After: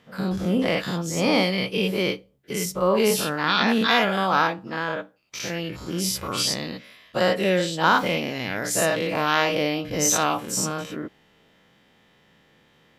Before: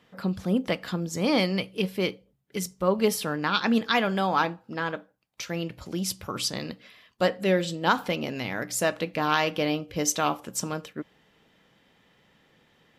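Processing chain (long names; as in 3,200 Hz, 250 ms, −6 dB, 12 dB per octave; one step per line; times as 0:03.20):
every bin's largest magnitude spread in time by 120 ms
level −1.5 dB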